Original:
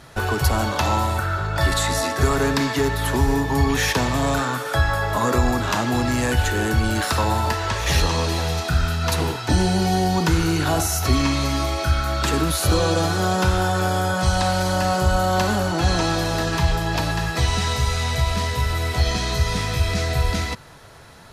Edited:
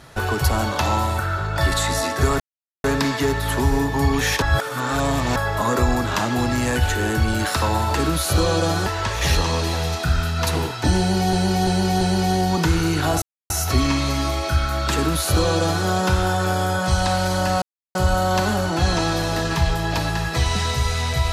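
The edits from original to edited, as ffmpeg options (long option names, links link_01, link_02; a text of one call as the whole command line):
ffmpeg -i in.wav -filter_complex "[0:a]asplit=11[link_01][link_02][link_03][link_04][link_05][link_06][link_07][link_08][link_09][link_10][link_11];[link_01]atrim=end=2.4,asetpts=PTS-STARTPTS,afade=type=out:start_time=2.396:duration=0.004:curve=hsin,apad=pad_dur=0.44[link_12];[link_02]atrim=start=2.4:end=3.982,asetpts=PTS-STARTPTS,afade=type=in:duration=0.004:curve=hsin[link_13];[link_03]atrim=start=3.978:end=4.922,asetpts=PTS-STARTPTS,areverse[link_14];[link_04]atrim=start=4.918:end=7.512[link_15];[link_05]atrim=start=12.288:end=13.202[link_16];[link_06]atrim=start=7.508:end=9.982[link_17];[link_07]atrim=start=9.638:end=9.982[link_18];[link_08]atrim=start=9.638:end=9.982[link_19];[link_09]atrim=start=9.638:end=10.85,asetpts=PTS-STARTPTS,afade=type=out:start_time=1.208:duration=0.004:curve=hsin,apad=pad_dur=0.28[link_20];[link_10]atrim=start=10.85:end=14.97,asetpts=PTS-STARTPTS,afade=type=in:duration=0.004:curve=hsin,afade=type=out:start_time=4.116:duration=0.004:curve=hsin,apad=pad_dur=0.33[link_21];[link_11]atrim=start=14.97,asetpts=PTS-STARTPTS,afade=type=in:duration=0.004:curve=hsin[link_22];[link_12][link_13]concat=n=2:v=0:a=1[link_23];[link_23][link_14]acrossfade=duration=0.004:curve1=hsin:curve2=hsin[link_24];[link_24][link_15]acrossfade=duration=0.004:curve1=hsin:curve2=hsin[link_25];[link_25][link_16]acrossfade=duration=0.004:curve1=hsin:curve2=hsin[link_26];[link_26][link_17]acrossfade=duration=0.004:curve1=hsin:curve2=hsin[link_27];[link_27][link_18]acrossfade=duration=0.004:curve1=hsin:curve2=hsin[link_28];[link_28][link_19]acrossfade=duration=0.004:curve1=hsin:curve2=hsin[link_29];[link_20][link_21][link_22]concat=n=3:v=0:a=1[link_30];[link_29][link_30]acrossfade=duration=0.004:curve1=hsin:curve2=hsin" out.wav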